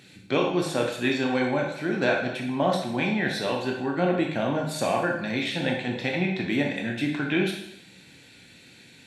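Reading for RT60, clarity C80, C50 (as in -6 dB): 0.80 s, 7.0 dB, 4.0 dB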